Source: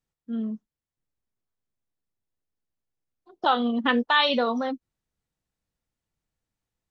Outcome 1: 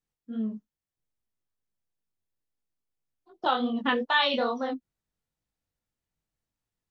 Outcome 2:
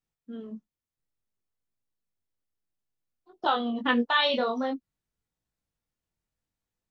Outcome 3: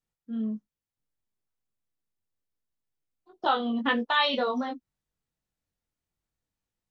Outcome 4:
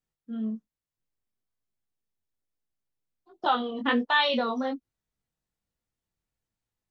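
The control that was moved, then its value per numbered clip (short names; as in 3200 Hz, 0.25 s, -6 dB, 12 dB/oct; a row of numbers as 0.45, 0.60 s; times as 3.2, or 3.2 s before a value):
chorus, rate: 2.4, 0.56, 0.26, 1.2 Hz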